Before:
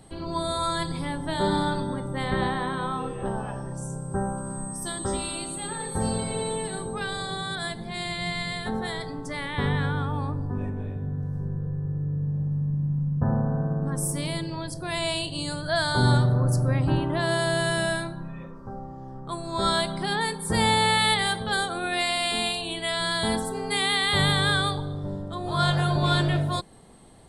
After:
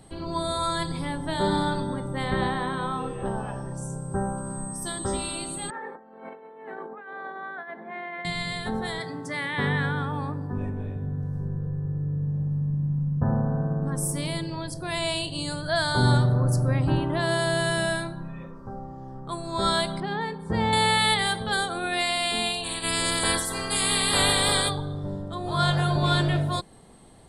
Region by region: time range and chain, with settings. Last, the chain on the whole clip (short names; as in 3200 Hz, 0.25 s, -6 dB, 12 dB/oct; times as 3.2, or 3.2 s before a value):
5.7–8.25 elliptic band-pass 230–1900 Hz, stop band 50 dB + negative-ratio compressor -36 dBFS, ratio -0.5 + low shelf 290 Hz -11.5 dB
8.98–10.53 HPF 110 Hz 24 dB/oct + bell 1800 Hz +5.5 dB 0.51 oct
20–20.73 HPF 42 Hz + tape spacing loss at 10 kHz 28 dB
22.63–24.68 spectral limiter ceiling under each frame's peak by 23 dB + doubler 12 ms -7.5 dB
whole clip: dry